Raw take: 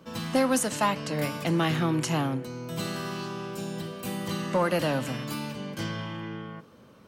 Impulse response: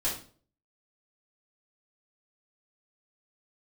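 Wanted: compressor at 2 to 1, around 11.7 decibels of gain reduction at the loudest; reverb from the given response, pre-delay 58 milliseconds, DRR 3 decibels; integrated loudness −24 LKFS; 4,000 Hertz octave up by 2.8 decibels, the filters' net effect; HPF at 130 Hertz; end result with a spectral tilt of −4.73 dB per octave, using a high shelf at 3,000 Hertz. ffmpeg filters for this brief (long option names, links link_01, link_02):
-filter_complex "[0:a]highpass=130,highshelf=frequency=3000:gain=-6,equalizer=frequency=4000:width_type=o:gain=8.5,acompressor=threshold=-42dB:ratio=2,asplit=2[link_01][link_02];[1:a]atrim=start_sample=2205,adelay=58[link_03];[link_02][link_03]afir=irnorm=-1:irlink=0,volume=-9.5dB[link_04];[link_01][link_04]amix=inputs=2:normalize=0,volume=13dB"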